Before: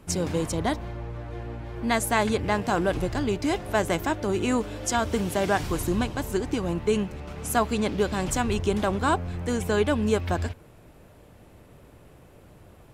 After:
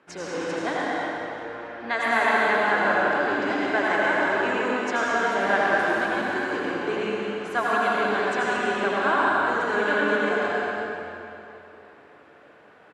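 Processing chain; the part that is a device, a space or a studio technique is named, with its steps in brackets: station announcement (band-pass 370–3700 Hz; peaking EQ 1.6 kHz +9 dB 0.58 oct; loudspeakers at several distances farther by 63 m -10 dB, 78 m -9 dB; reverberation RT60 3.0 s, pre-delay 75 ms, DRR -6 dB); trim -4.5 dB

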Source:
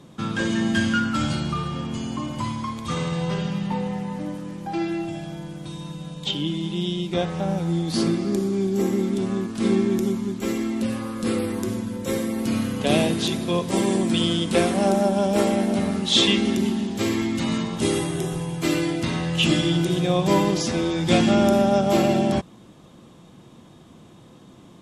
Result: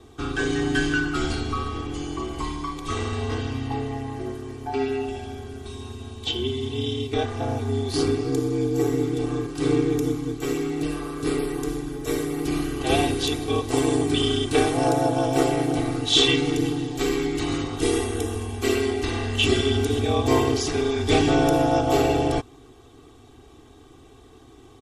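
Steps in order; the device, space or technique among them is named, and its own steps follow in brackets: ring-modulated robot voice (ring modulator 70 Hz; comb 2.6 ms, depth 92%)

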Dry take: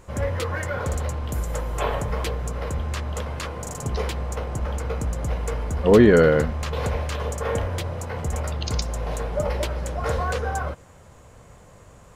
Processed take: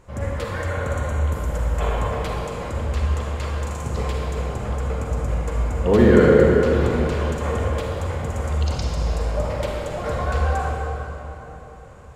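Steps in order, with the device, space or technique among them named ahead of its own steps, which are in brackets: swimming-pool hall (reverberation RT60 3.7 s, pre-delay 35 ms, DRR -3 dB; treble shelf 5.7 kHz -6.5 dB); 0.68–1.33 s: band-stop 5 kHz, Q 5.3; trim -3 dB

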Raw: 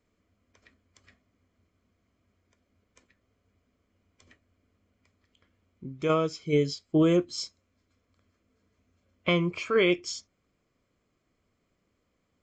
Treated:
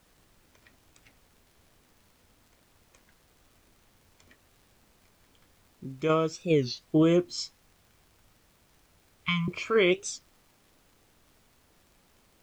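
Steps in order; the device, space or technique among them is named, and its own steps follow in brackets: 7.41–9.48 s: elliptic band-stop 170–1000 Hz; warped LP (warped record 33 1/3 rpm, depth 250 cents; crackle; pink noise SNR 31 dB)

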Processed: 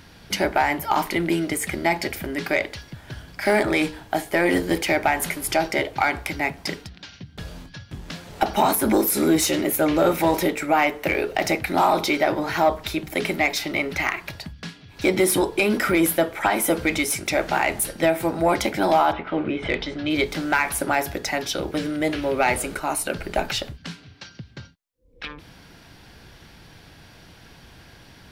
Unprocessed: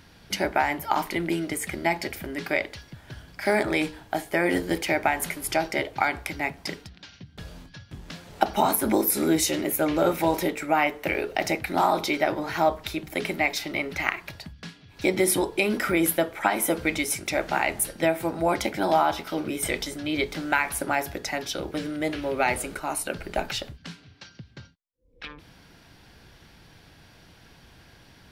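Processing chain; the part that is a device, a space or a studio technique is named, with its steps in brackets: 19.11–20.09 s: low-pass 2.3 kHz -> 4.7 kHz 24 dB/octave; saturation between pre-emphasis and de-emphasis (treble shelf 3.2 kHz +9 dB; saturation -13.5 dBFS, distortion -14 dB; treble shelf 3.2 kHz -9 dB); trim +5 dB

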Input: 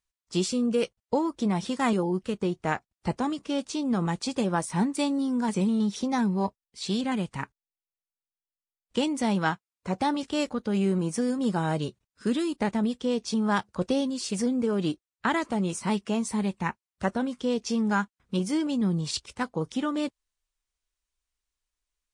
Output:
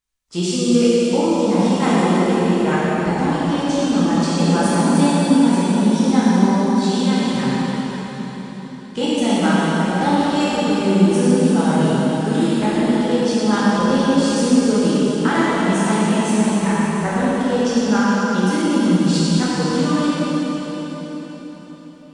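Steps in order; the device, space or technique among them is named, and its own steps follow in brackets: cathedral (reverberation RT60 4.8 s, pre-delay 7 ms, DRR -10 dB)

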